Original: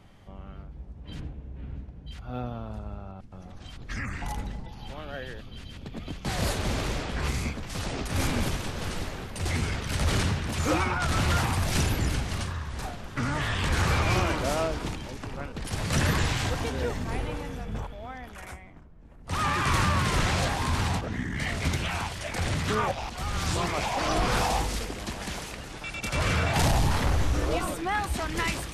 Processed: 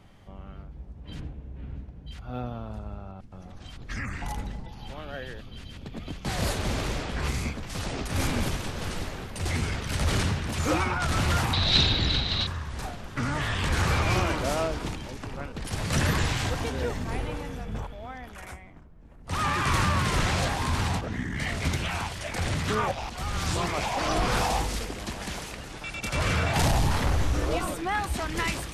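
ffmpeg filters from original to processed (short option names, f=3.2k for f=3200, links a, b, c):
-filter_complex "[0:a]asettb=1/sr,asplit=3[a][b][c];[a]atrim=end=11.534[d];[b]atrim=start=11.53:end=12.47,asetpts=PTS-STARTPTS,afade=t=in:d=0.004:c=qsin,afade=t=out:st=0.936:d=0.004:c=qsin,lowpass=f=3.9k:t=q:w=13[e];[c]atrim=start=12.466[f];[d][e]acrossfade=d=0.004:c1=hsin:c2=qsin[g];[g][f]acrossfade=d=0.004:c1=qsin:c2=hsin"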